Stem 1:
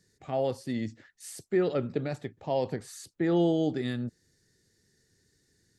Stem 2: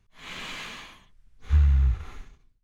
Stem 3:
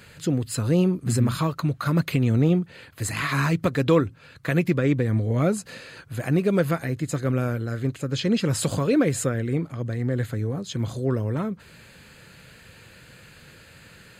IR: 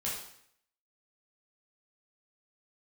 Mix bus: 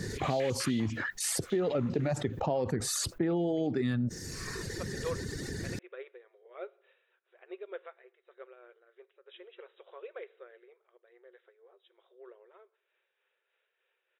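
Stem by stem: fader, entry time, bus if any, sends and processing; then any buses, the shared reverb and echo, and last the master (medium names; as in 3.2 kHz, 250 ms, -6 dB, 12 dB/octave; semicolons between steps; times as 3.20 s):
0.0 dB, 0.00 s, no send, reverb removal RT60 0.87 s; treble shelf 2.5 kHz -11 dB; level flattener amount 70%
+1.5 dB, 0.00 s, no send, step-sequenced high-pass 10 Hz 730–6100 Hz; auto duck -8 dB, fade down 0.50 s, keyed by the first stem
-14.5 dB, 1.15 s, send -21.5 dB, FFT band-pass 350–3900 Hz; tremolo 3.3 Hz, depth 39%; upward expansion 1.5:1, over -44 dBFS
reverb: on, RT60 0.65 s, pre-delay 10 ms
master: compression, threshold -26 dBFS, peak gain reduction 6 dB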